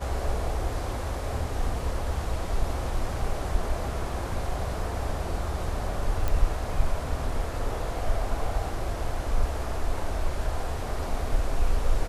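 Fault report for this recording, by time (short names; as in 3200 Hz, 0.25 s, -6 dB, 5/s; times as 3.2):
6.28 pop -14 dBFS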